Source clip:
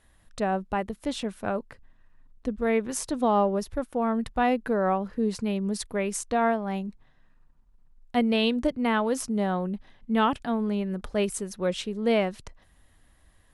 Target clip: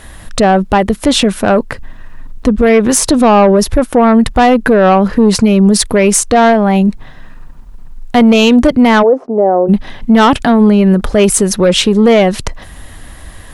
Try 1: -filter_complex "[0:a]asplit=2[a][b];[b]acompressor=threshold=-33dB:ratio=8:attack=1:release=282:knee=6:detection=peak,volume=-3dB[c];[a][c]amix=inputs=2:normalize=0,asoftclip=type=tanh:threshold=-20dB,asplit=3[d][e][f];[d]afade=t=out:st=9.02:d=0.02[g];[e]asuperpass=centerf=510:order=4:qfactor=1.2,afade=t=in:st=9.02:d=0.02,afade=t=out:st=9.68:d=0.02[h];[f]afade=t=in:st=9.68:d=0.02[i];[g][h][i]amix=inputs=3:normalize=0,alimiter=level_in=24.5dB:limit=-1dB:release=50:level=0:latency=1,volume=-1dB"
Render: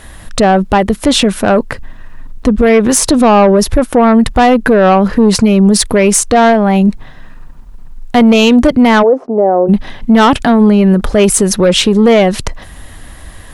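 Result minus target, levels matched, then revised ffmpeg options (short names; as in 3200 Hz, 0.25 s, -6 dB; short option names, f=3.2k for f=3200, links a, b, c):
compressor: peak gain reduction -8.5 dB
-filter_complex "[0:a]asplit=2[a][b];[b]acompressor=threshold=-42.5dB:ratio=8:attack=1:release=282:knee=6:detection=peak,volume=-3dB[c];[a][c]amix=inputs=2:normalize=0,asoftclip=type=tanh:threshold=-20dB,asplit=3[d][e][f];[d]afade=t=out:st=9.02:d=0.02[g];[e]asuperpass=centerf=510:order=4:qfactor=1.2,afade=t=in:st=9.02:d=0.02,afade=t=out:st=9.68:d=0.02[h];[f]afade=t=in:st=9.68:d=0.02[i];[g][h][i]amix=inputs=3:normalize=0,alimiter=level_in=24.5dB:limit=-1dB:release=50:level=0:latency=1,volume=-1dB"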